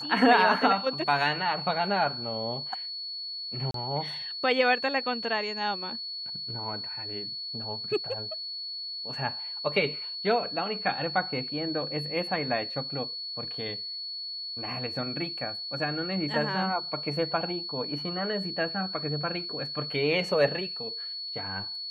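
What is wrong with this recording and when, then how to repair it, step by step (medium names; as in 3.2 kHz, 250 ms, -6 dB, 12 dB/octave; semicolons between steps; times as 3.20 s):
whine 4.4 kHz -34 dBFS
3.71–3.74 s: dropout 33 ms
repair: band-stop 4.4 kHz, Q 30; interpolate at 3.71 s, 33 ms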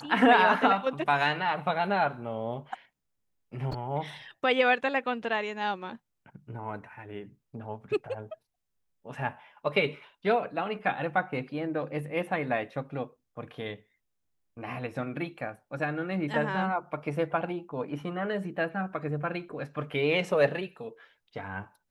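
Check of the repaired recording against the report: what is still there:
nothing left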